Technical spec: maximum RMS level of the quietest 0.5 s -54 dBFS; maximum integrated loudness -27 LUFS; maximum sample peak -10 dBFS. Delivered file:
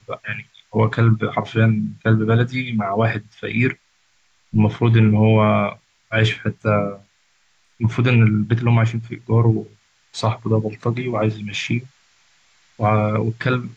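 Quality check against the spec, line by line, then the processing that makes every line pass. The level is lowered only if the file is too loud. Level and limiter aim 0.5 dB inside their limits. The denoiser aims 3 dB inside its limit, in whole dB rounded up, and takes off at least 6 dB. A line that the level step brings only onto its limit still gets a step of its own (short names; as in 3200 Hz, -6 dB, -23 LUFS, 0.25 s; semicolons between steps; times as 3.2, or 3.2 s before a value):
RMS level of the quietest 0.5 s -61 dBFS: OK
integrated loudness -19.5 LUFS: fail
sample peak -5.0 dBFS: fail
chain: gain -8 dB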